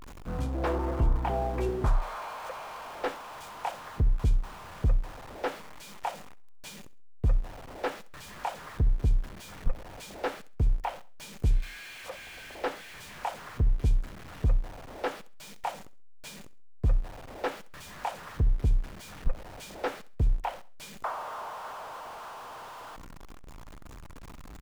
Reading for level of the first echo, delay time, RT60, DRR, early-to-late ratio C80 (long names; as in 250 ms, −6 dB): −19.0 dB, 66 ms, no reverb audible, no reverb audible, no reverb audible